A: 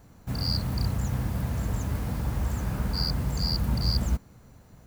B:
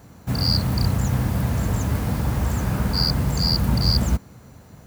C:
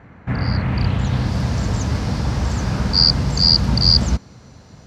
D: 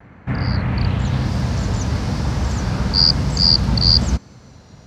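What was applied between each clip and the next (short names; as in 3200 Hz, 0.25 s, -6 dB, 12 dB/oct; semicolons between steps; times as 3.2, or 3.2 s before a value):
HPF 65 Hz; gain +8 dB
low-pass sweep 2000 Hz -> 5200 Hz, 0.56–1.35; gain +2 dB
vibrato 1 Hz 45 cents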